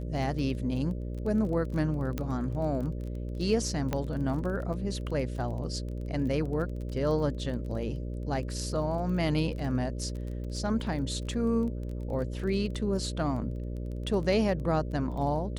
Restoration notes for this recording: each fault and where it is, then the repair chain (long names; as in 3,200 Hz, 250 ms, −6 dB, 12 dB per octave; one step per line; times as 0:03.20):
mains buzz 60 Hz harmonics 10 −35 dBFS
surface crackle 22 per second −37 dBFS
0:02.18: click −18 dBFS
0:03.93: click −16 dBFS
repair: click removal
hum removal 60 Hz, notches 10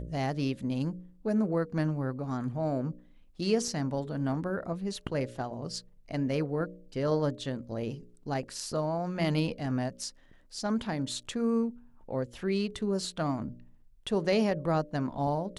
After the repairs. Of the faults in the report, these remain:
0:03.93: click